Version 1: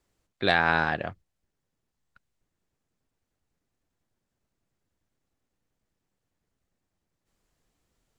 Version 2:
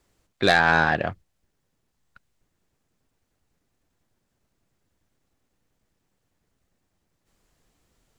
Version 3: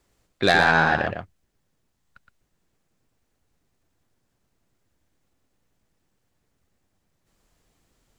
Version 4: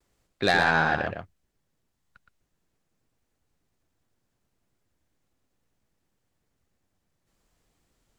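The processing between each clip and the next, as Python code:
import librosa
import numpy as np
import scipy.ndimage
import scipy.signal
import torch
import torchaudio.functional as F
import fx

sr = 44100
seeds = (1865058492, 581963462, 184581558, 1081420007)

y1 = 10.0 ** (-15.0 / 20.0) * np.tanh(x / 10.0 ** (-15.0 / 20.0))
y1 = y1 * 10.0 ** (7.0 / 20.0)
y2 = y1 + 10.0 ** (-6.0 / 20.0) * np.pad(y1, (int(117 * sr / 1000.0), 0))[:len(y1)]
y3 = fx.vibrato(y2, sr, rate_hz=0.68, depth_cents=34.0)
y3 = y3 * 10.0 ** (-4.0 / 20.0)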